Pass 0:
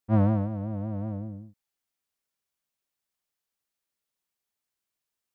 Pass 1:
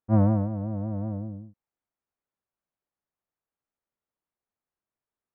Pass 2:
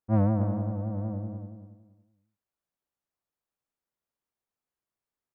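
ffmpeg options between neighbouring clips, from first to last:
-af "lowpass=1300,volume=1.19"
-filter_complex "[0:a]aecho=1:1:280|560|840:0.376|0.0864|0.0199,asplit=2[s0][s1];[s1]asoftclip=type=tanh:threshold=0.0891,volume=0.501[s2];[s0][s2]amix=inputs=2:normalize=0,volume=0.562"

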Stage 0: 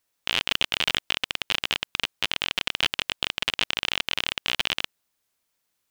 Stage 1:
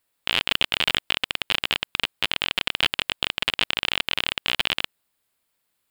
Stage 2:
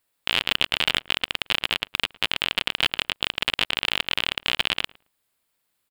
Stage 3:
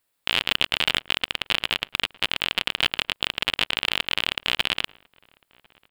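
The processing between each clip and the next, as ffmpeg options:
-af "equalizer=f=6000:t=o:w=0.32:g=-10.5,volume=1.33"
-filter_complex "[0:a]asplit=2[s0][s1];[s1]adelay=110,lowpass=f=1400:p=1,volume=0.0891,asplit=2[s2][s3];[s3]adelay=110,lowpass=f=1400:p=1,volume=0.18[s4];[s0][s2][s4]amix=inputs=3:normalize=0"
-filter_complex "[0:a]asplit=2[s0][s1];[s1]adelay=1050,volume=0.0447,highshelf=f=4000:g=-23.6[s2];[s0][s2]amix=inputs=2:normalize=0"

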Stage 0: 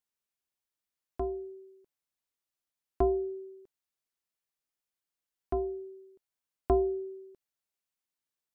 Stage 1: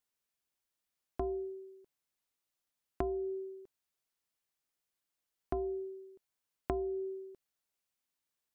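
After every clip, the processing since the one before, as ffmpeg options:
-af "acompressor=threshold=0.02:ratio=16,volume=1.26"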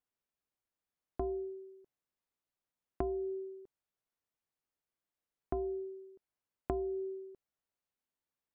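-af "highshelf=f=2300:g=-12"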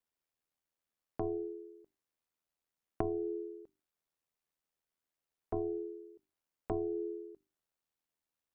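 -af "bandreject=f=50:t=h:w=6,bandreject=f=100:t=h:w=6,bandreject=f=150:t=h:w=6,bandreject=f=200:t=h:w=6,bandreject=f=250:t=h:w=6,bandreject=f=300:t=h:w=6,bandreject=f=350:t=h:w=6,aeval=exprs='val(0)*sin(2*PI*40*n/s)':c=same,volume=1.5"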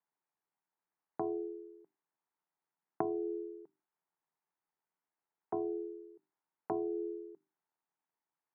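-af "highpass=f=160:w=0.5412,highpass=f=160:w=1.3066,equalizer=f=160:t=q:w=4:g=4,equalizer=f=230:t=q:w=4:g=-7,equalizer=f=540:t=q:w=4:g=-7,equalizer=f=890:t=q:w=4:g=8,lowpass=f=2000:w=0.5412,lowpass=f=2000:w=1.3066,volume=1.12"

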